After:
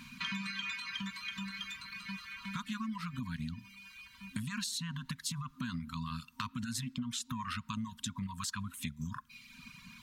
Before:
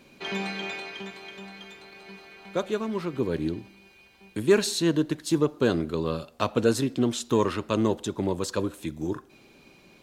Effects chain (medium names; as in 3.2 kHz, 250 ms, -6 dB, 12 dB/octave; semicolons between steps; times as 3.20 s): peak limiter -20 dBFS, peak gain reduction 11 dB; reverb removal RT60 0.89 s; FFT band-reject 260–930 Hz; compression 6:1, threshold -42 dBFS, peak gain reduction 14.5 dB; trim +6 dB